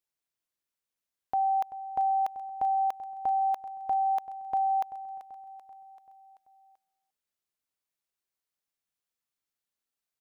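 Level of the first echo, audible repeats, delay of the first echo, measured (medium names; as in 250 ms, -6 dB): -15.0 dB, 4, 386 ms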